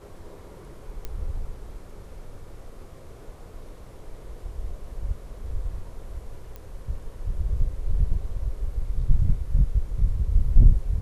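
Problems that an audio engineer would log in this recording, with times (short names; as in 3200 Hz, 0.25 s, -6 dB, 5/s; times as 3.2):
1.05 pop -19 dBFS
6.56 pop -25 dBFS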